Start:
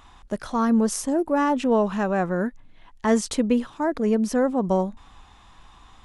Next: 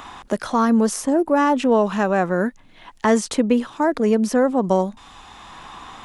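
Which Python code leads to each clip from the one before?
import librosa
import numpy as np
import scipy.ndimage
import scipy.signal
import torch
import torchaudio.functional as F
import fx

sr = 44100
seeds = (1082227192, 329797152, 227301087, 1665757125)

y = fx.low_shelf(x, sr, hz=110.0, db=-11.5)
y = fx.band_squash(y, sr, depth_pct=40)
y = F.gain(torch.from_numpy(y), 5.0).numpy()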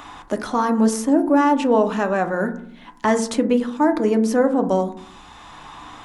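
y = fx.rev_fdn(x, sr, rt60_s=0.61, lf_ratio=1.55, hf_ratio=0.3, size_ms=20.0, drr_db=6.5)
y = F.gain(torch.from_numpy(y), -1.5).numpy()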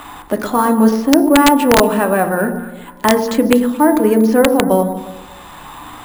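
y = fx.echo_alternate(x, sr, ms=118, hz=860.0, feedback_pct=56, wet_db=-9)
y = np.repeat(scipy.signal.resample_poly(y, 1, 4), 4)[:len(y)]
y = (np.mod(10.0 ** (6.5 / 20.0) * y + 1.0, 2.0) - 1.0) / 10.0 ** (6.5 / 20.0)
y = F.gain(torch.from_numpy(y), 5.5).numpy()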